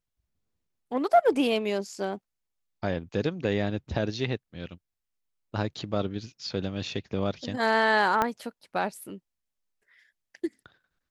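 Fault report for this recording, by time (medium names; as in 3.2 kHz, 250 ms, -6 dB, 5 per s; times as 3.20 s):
8.22 s: pop -11 dBFS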